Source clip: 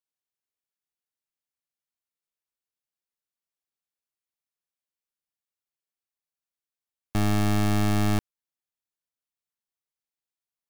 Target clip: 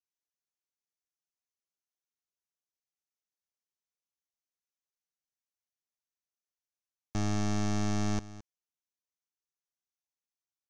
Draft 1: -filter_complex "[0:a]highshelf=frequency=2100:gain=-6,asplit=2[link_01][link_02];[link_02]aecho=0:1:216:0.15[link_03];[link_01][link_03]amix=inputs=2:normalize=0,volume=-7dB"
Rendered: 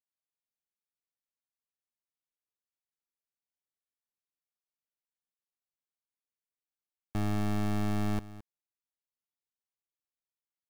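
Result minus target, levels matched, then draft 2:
8,000 Hz band −9.5 dB
-filter_complex "[0:a]lowpass=frequency=6200:width_type=q:width=5,highshelf=frequency=2100:gain=-6,asplit=2[link_01][link_02];[link_02]aecho=0:1:216:0.15[link_03];[link_01][link_03]amix=inputs=2:normalize=0,volume=-7dB"

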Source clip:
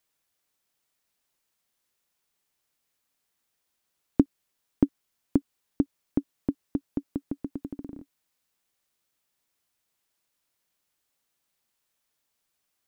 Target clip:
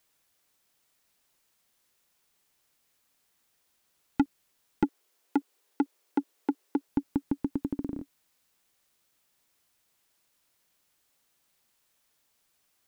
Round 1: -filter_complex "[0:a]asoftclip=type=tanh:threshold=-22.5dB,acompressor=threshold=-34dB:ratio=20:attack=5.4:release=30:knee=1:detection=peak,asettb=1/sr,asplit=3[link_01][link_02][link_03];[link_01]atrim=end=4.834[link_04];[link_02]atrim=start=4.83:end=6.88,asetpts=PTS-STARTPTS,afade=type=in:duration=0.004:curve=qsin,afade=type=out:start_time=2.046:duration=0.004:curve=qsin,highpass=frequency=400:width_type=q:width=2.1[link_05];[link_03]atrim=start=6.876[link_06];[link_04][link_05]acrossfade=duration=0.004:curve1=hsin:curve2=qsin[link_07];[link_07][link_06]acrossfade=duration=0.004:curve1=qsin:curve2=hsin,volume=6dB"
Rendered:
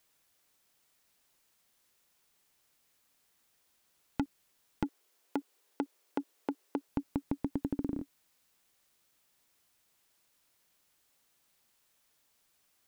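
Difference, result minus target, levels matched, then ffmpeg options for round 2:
downward compressor: peak gain reduction +10.5 dB
-filter_complex "[0:a]asoftclip=type=tanh:threshold=-22.5dB,asettb=1/sr,asplit=3[link_01][link_02][link_03];[link_01]atrim=end=4.834[link_04];[link_02]atrim=start=4.83:end=6.88,asetpts=PTS-STARTPTS,afade=type=in:duration=0.004:curve=qsin,afade=type=out:start_time=2.046:duration=0.004:curve=qsin,highpass=frequency=400:width_type=q:width=2.1[link_05];[link_03]atrim=start=6.876[link_06];[link_04][link_05]acrossfade=duration=0.004:curve1=hsin:curve2=qsin[link_07];[link_07][link_06]acrossfade=duration=0.004:curve1=qsin:curve2=hsin,volume=6dB"

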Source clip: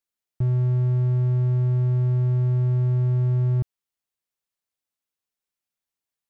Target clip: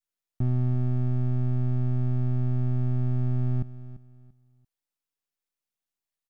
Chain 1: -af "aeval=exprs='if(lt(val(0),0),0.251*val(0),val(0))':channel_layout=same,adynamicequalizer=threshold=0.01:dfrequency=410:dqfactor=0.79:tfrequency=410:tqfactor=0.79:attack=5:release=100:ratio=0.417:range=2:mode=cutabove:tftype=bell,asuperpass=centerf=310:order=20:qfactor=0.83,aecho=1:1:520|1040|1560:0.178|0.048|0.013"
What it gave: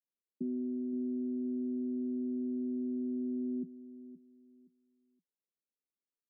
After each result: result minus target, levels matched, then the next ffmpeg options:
echo 179 ms late; 250 Hz band +9.0 dB
-af "aeval=exprs='if(lt(val(0),0),0.251*val(0),val(0))':channel_layout=same,adynamicequalizer=threshold=0.01:dfrequency=410:dqfactor=0.79:tfrequency=410:tqfactor=0.79:attack=5:release=100:ratio=0.417:range=2:mode=cutabove:tftype=bell,asuperpass=centerf=310:order=20:qfactor=0.83,aecho=1:1:341|682|1023:0.178|0.048|0.013"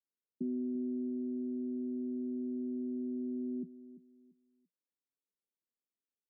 250 Hz band +9.0 dB
-af "aeval=exprs='if(lt(val(0),0),0.251*val(0),val(0))':channel_layout=same,adynamicequalizer=threshold=0.01:dfrequency=410:dqfactor=0.79:tfrequency=410:tqfactor=0.79:attack=5:release=100:ratio=0.417:range=2:mode=cutabove:tftype=bell,aecho=1:1:341|682|1023:0.178|0.048|0.013"

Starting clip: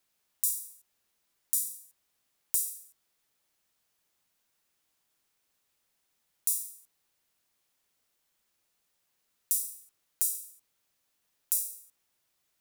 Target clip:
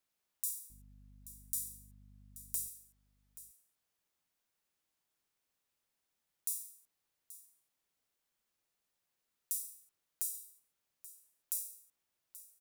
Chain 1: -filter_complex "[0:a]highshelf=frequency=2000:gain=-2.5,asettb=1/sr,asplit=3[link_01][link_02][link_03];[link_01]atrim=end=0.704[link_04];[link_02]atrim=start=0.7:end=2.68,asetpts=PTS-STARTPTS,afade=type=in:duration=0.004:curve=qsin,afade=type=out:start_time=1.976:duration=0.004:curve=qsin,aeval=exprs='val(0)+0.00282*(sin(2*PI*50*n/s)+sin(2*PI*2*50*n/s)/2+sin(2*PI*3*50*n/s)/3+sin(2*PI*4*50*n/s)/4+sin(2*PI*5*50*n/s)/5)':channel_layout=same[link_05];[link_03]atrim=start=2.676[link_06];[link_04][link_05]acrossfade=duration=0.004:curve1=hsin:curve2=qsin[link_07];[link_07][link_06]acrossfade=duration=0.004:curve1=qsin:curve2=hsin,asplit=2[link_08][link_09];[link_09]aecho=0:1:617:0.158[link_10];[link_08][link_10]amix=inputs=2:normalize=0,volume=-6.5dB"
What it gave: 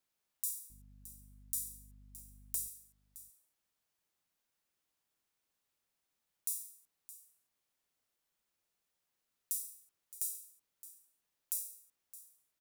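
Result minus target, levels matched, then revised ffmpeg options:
echo 213 ms early
-filter_complex "[0:a]highshelf=frequency=2000:gain=-2.5,asettb=1/sr,asplit=3[link_01][link_02][link_03];[link_01]atrim=end=0.704[link_04];[link_02]atrim=start=0.7:end=2.68,asetpts=PTS-STARTPTS,afade=type=in:duration=0.004:curve=qsin,afade=type=out:start_time=1.976:duration=0.004:curve=qsin,aeval=exprs='val(0)+0.00282*(sin(2*PI*50*n/s)+sin(2*PI*2*50*n/s)/2+sin(2*PI*3*50*n/s)/3+sin(2*PI*4*50*n/s)/4+sin(2*PI*5*50*n/s)/5)':channel_layout=same[link_05];[link_03]atrim=start=2.676[link_06];[link_04][link_05]acrossfade=duration=0.004:curve1=hsin:curve2=qsin[link_07];[link_07][link_06]acrossfade=duration=0.004:curve1=qsin:curve2=hsin,asplit=2[link_08][link_09];[link_09]aecho=0:1:830:0.158[link_10];[link_08][link_10]amix=inputs=2:normalize=0,volume=-6.5dB"

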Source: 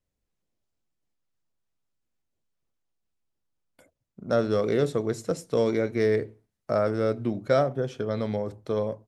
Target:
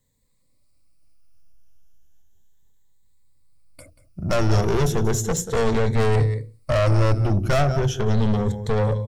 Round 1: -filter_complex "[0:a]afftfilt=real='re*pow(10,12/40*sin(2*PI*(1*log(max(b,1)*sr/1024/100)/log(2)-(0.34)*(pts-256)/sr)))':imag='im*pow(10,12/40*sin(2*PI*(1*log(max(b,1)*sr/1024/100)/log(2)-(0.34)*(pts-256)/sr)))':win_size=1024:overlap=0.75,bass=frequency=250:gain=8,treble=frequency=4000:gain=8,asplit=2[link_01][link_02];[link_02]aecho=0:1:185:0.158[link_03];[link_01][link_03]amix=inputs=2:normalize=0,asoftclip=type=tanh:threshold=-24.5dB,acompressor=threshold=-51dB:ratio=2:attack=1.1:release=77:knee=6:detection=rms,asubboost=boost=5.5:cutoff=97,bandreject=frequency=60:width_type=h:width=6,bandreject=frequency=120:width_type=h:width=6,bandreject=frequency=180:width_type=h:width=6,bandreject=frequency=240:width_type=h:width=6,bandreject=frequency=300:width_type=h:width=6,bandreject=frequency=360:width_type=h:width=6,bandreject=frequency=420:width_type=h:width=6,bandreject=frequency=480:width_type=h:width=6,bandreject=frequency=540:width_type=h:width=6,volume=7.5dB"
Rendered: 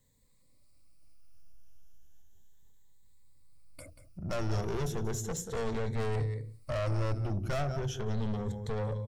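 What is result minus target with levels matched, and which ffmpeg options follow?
downward compressor: peak gain reduction +13 dB
-filter_complex "[0:a]afftfilt=real='re*pow(10,12/40*sin(2*PI*(1*log(max(b,1)*sr/1024/100)/log(2)-(0.34)*(pts-256)/sr)))':imag='im*pow(10,12/40*sin(2*PI*(1*log(max(b,1)*sr/1024/100)/log(2)-(0.34)*(pts-256)/sr)))':win_size=1024:overlap=0.75,bass=frequency=250:gain=8,treble=frequency=4000:gain=8,asplit=2[link_01][link_02];[link_02]aecho=0:1:185:0.158[link_03];[link_01][link_03]amix=inputs=2:normalize=0,asoftclip=type=tanh:threshold=-24.5dB,asubboost=boost=5.5:cutoff=97,bandreject=frequency=60:width_type=h:width=6,bandreject=frequency=120:width_type=h:width=6,bandreject=frequency=180:width_type=h:width=6,bandreject=frequency=240:width_type=h:width=6,bandreject=frequency=300:width_type=h:width=6,bandreject=frequency=360:width_type=h:width=6,bandreject=frequency=420:width_type=h:width=6,bandreject=frequency=480:width_type=h:width=6,bandreject=frequency=540:width_type=h:width=6,volume=7.5dB"

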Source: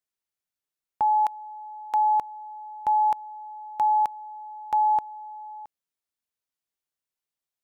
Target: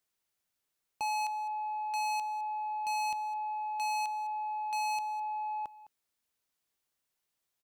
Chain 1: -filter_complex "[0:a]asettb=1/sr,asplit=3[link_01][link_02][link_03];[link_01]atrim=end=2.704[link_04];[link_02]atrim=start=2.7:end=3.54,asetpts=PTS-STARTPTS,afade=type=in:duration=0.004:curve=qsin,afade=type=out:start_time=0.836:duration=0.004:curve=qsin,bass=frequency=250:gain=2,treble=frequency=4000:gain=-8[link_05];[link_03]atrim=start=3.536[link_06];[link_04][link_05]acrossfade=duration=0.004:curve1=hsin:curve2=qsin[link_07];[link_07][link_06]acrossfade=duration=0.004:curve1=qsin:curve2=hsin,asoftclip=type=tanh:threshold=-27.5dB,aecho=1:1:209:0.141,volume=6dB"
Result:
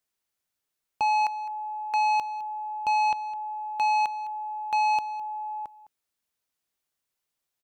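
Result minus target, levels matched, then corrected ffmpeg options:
soft clipping: distortion −8 dB
-filter_complex "[0:a]asettb=1/sr,asplit=3[link_01][link_02][link_03];[link_01]atrim=end=2.704[link_04];[link_02]atrim=start=2.7:end=3.54,asetpts=PTS-STARTPTS,afade=type=in:duration=0.004:curve=qsin,afade=type=out:start_time=0.836:duration=0.004:curve=qsin,bass=frequency=250:gain=2,treble=frequency=4000:gain=-8[link_05];[link_03]atrim=start=3.536[link_06];[link_04][link_05]acrossfade=duration=0.004:curve1=hsin:curve2=qsin[link_07];[link_07][link_06]acrossfade=duration=0.004:curve1=qsin:curve2=hsin,asoftclip=type=tanh:threshold=-37.5dB,aecho=1:1:209:0.141,volume=6dB"

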